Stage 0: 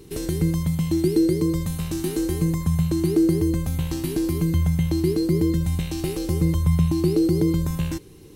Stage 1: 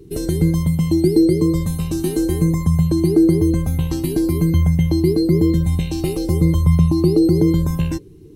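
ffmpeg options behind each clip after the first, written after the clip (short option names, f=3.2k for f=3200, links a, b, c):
-af "afftdn=nr=15:nf=-40,volume=5.5dB"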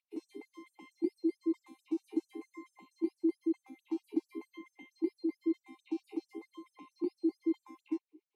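-filter_complex "[0:a]acrossover=split=220|3000[a][b][c];[b]acompressor=threshold=-17dB:ratio=6[d];[a][d][c]amix=inputs=3:normalize=0,asplit=3[e][f][g];[e]bandpass=f=300:t=q:w=8,volume=0dB[h];[f]bandpass=f=870:t=q:w=8,volume=-6dB[i];[g]bandpass=f=2.24k:t=q:w=8,volume=-9dB[j];[h][i][j]amix=inputs=3:normalize=0,afftfilt=real='re*gte(b*sr/1024,210*pow(6000/210,0.5+0.5*sin(2*PI*4.5*pts/sr)))':imag='im*gte(b*sr/1024,210*pow(6000/210,0.5+0.5*sin(2*PI*4.5*pts/sr)))':win_size=1024:overlap=0.75,volume=-3.5dB"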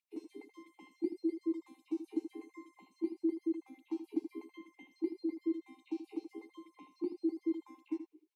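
-af "aecho=1:1:79:0.299,volume=-2.5dB"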